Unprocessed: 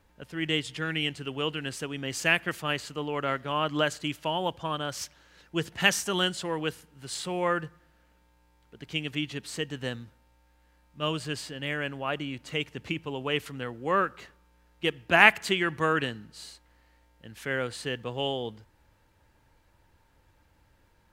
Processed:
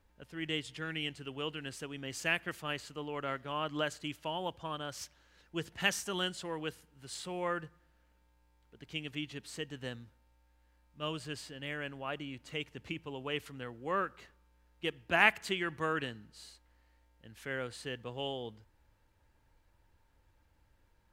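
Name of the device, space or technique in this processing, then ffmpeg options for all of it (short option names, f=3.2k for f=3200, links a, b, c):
low shelf boost with a cut just above: -af "lowshelf=f=68:g=7,equalizer=f=150:t=o:w=0.77:g=-2,volume=-8dB"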